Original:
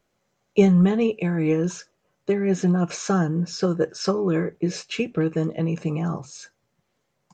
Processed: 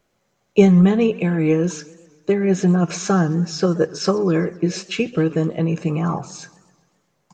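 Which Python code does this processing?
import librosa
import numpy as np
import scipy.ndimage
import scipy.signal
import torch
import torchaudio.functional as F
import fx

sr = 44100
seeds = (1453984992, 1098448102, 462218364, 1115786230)

y = fx.peak_eq(x, sr, hz=fx.line((5.86, 2000.0), (6.31, 550.0)), db=12.5, octaves=0.3, at=(5.86, 6.31), fade=0.02)
y = fx.echo_warbled(y, sr, ms=130, feedback_pct=55, rate_hz=2.8, cents=197, wet_db=-20.5)
y = y * librosa.db_to_amplitude(4.0)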